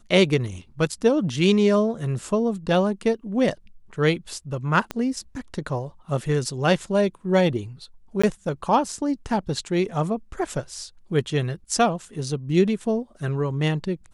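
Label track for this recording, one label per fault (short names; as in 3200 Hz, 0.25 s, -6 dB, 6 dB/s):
4.910000	4.910000	pop -13 dBFS
8.220000	8.230000	gap 15 ms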